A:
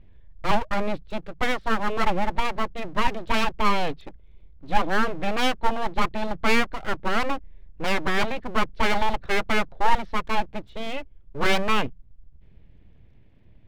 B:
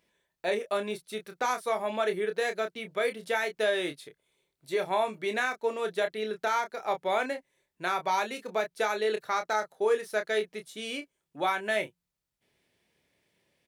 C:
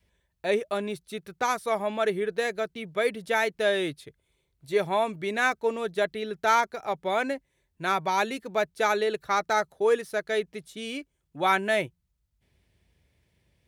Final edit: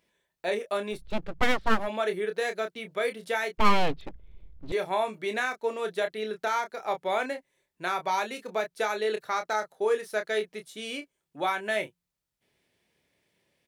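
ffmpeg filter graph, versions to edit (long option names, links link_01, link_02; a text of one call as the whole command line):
ffmpeg -i take0.wav -i take1.wav -filter_complex "[0:a]asplit=2[link_01][link_02];[1:a]asplit=3[link_03][link_04][link_05];[link_03]atrim=end=1.08[link_06];[link_01]atrim=start=0.92:end=1.89[link_07];[link_04]atrim=start=1.73:end=3.582[link_08];[link_02]atrim=start=3.578:end=4.722[link_09];[link_05]atrim=start=4.718[link_10];[link_06][link_07]acrossfade=duration=0.16:curve1=tri:curve2=tri[link_11];[link_11][link_08]acrossfade=duration=0.16:curve1=tri:curve2=tri[link_12];[link_12][link_09]acrossfade=duration=0.004:curve1=hsin:curve2=hsin[link_13];[link_13][link_10]acrossfade=duration=0.004:curve1=hsin:curve2=hsin" out.wav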